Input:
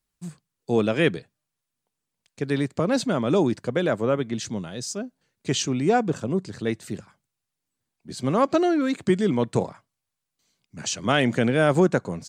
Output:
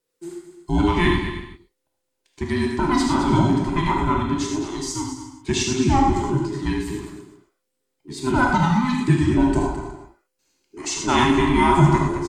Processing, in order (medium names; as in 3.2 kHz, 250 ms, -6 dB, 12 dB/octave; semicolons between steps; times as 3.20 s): every band turned upside down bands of 500 Hz; 9.09–10.92 s: band-stop 3.6 kHz, Q 7.4; on a send: multi-tap echo 76/214/367 ms -10.5/-10/-19.5 dB; on the sum: gated-style reverb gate 140 ms flat, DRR 0 dB